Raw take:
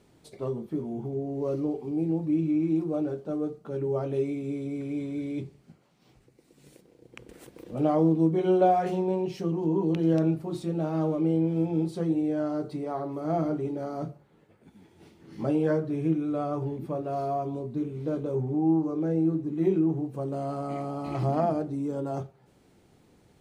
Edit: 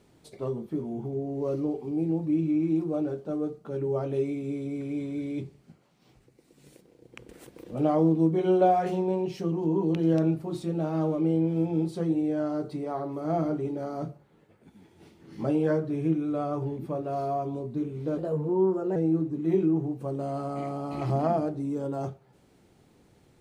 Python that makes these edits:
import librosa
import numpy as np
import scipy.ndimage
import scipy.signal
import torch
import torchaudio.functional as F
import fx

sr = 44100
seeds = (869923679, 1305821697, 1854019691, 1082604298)

y = fx.edit(x, sr, fx.speed_span(start_s=18.18, length_s=0.91, speed=1.17), tone=tone)